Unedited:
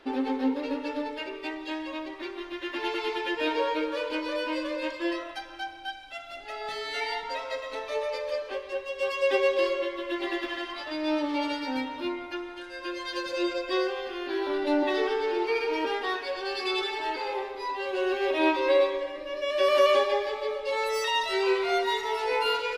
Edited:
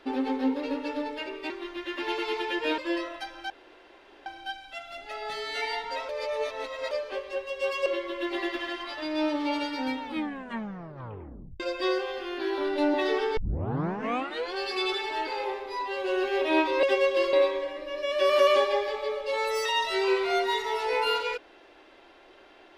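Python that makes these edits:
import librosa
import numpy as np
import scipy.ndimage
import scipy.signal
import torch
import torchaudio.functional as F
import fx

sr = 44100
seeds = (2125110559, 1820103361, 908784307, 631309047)

y = fx.edit(x, sr, fx.cut(start_s=1.5, length_s=0.76),
    fx.cut(start_s=3.54, length_s=1.39),
    fx.insert_room_tone(at_s=5.65, length_s=0.76),
    fx.reverse_span(start_s=7.48, length_s=0.82),
    fx.move(start_s=9.25, length_s=0.5, to_s=18.72),
    fx.tape_stop(start_s=11.89, length_s=1.6),
    fx.tape_start(start_s=15.26, length_s=1.18), tone=tone)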